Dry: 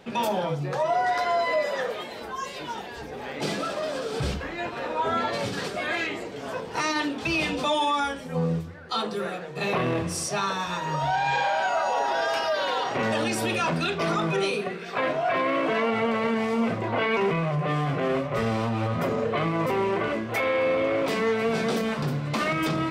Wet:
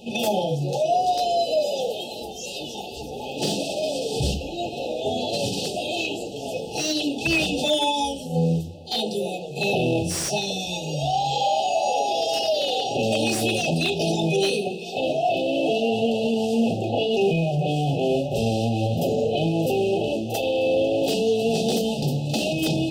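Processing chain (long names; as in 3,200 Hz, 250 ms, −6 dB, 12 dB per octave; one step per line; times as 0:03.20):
high-shelf EQ 3,500 Hz +6.5 dB
echo ahead of the sound 43 ms −14 dB
brick-wall band-stop 880–2,500 Hz
slew-rate limiting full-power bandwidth 210 Hz
level +3.5 dB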